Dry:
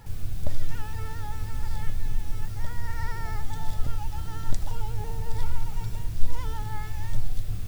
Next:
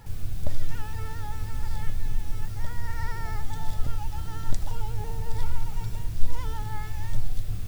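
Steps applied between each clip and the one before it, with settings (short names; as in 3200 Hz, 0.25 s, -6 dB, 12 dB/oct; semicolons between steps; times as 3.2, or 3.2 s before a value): nothing audible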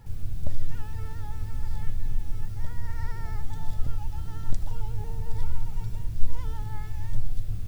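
low shelf 370 Hz +7 dB; gain -7 dB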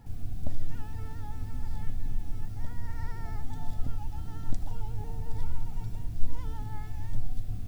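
small resonant body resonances 250/720 Hz, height 9 dB, ringing for 30 ms; gain -4 dB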